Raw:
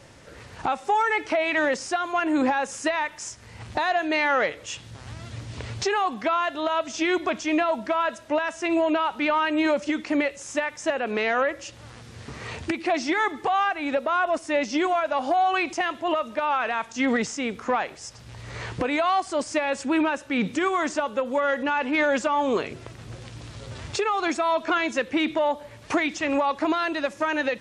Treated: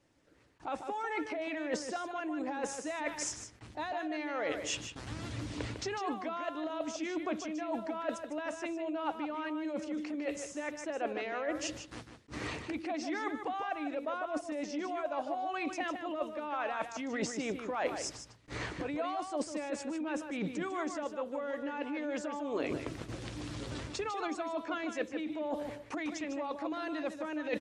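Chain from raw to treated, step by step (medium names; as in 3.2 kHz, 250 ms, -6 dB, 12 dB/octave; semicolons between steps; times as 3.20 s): peaking EQ 300 Hz +14.5 dB 0.28 oct; peak limiter -15 dBFS, peak gain reduction 11.5 dB; dynamic bell 590 Hz, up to +7 dB, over -38 dBFS, Q 1.8; gate with hold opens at -30 dBFS; reverse; compression 10:1, threshold -30 dBFS, peak gain reduction 16 dB; reverse; echo from a far wall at 26 m, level -7 dB; harmonic-percussive split percussive +6 dB; attacks held to a fixed rise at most 370 dB/s; trim -5.5 dB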